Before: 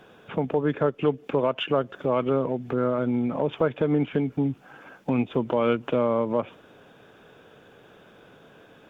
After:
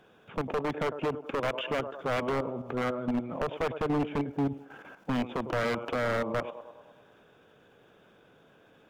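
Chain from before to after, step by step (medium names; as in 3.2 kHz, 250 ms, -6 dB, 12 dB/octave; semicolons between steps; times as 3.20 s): level held to a coarse grid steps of 12 dB; band-passed feedback delay 102 ms, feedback 65%, band-pass 790 Hz, level -12 dB; wavefolder -22.5 dBFS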